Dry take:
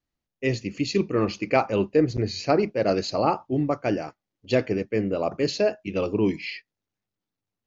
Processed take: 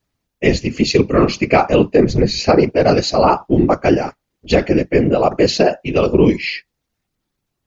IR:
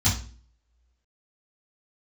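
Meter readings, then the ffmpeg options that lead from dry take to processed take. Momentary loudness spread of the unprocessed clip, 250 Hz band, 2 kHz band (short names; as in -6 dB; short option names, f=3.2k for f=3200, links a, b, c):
6 LU, +10.0 dB, +10.0 dB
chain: -af "afftfilt=real='hypot(re,im)*cos(2*PI*random(0))':imag='hypot(re,im)*sin(2*PI*random(1))':win_size=512:overlap=0.75,alimiter=level_in=18.5dB:limit=-1dB:release=50:level=0:latency=1,volume=-1dB"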